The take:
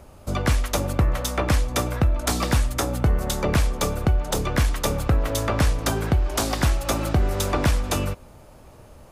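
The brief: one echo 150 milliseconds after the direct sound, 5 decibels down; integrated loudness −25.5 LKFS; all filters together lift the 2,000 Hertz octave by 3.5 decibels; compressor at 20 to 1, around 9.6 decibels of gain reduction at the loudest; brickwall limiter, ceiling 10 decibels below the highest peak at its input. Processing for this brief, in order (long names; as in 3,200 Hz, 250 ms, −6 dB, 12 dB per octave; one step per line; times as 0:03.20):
parametric band 2,000 Hz +4.5 dB
downward compressor 20 to 1, threshold −24 dBFS
brickwall limiter −21.5 dBFS
single-tap delay 150 ms −5 dB
level +5.5 dB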